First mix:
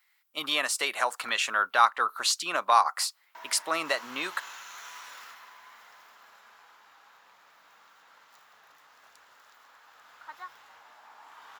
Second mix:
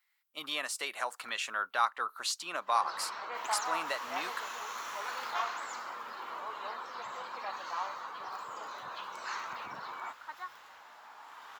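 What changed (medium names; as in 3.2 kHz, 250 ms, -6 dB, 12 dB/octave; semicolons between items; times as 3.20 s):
speech -8.0 dB; first sound: unmuted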